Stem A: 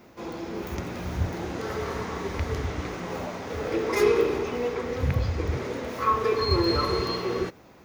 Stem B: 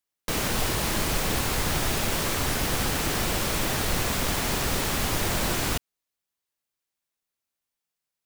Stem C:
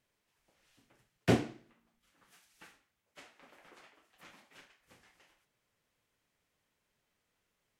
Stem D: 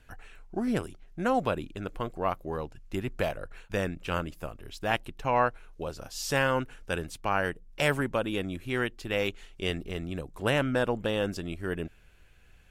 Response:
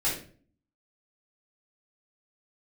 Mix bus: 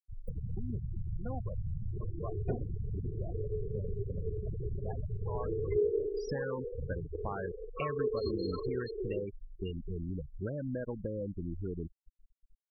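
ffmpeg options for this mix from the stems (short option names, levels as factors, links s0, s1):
-filter_complex "[0:a]equalizer=f=420:t=o:w=0.34:g=13,adelay=1750,volume=0.211[s0];[1:a]equalizer=f=100:t=o:w=0.67:g=9,equalizer=f=250:t=o:w=0.67:g=-8,equalizer=f=1000:t=o:w=0.67:g=-8,equalizer=f=16000:t=o:w=0.67:g=12,volume=0.841[s1];[2:a]flanger=delay=0.7:depth=9.8:regen=-56:speed=0.67:shape=sinusoidal,adelay=1200,volume=0.944[s2];[3:a]volume=0.794[s3];[s1][s3]amix=inputs=2:normalize=0,lowshelf=f=190:g=7,acompressor=threshold=0.0316:ratio=5,volume=1[s4];[s0][s2][s4]amix=inputs=3:normalize=0,afftfilt=real='re*gte(hypot(re,im),0.0562)':imag='im*gte(hypot(re,im),0.0562)':win_size=1024:overlap=0.75,acompressor=threshold=0.0158:ratio=1.5"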